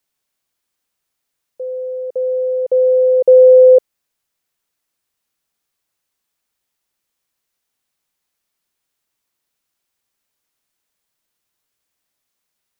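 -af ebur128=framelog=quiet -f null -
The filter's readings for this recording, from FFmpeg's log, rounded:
Integrated loudness:
  I:         -11.0 LUFS
  Threshold: -22.3 LUFS
Loudness range:
  LRA:         6.2 LU
  Threshold: -34.1 LUFS
  LRA low:   -19.2 LUFS
  LRA high:  -13.0 LUFS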